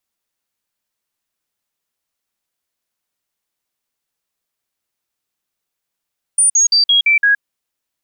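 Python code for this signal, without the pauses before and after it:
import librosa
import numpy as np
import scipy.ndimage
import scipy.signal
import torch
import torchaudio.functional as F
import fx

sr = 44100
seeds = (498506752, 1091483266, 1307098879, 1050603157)

y = fx.stepped_sweep(sr, from_hz=9330.0, direction='down', per_octave=2, tones=6, dwell_s=0.12, gap_s=0.05, level_db=-8.5)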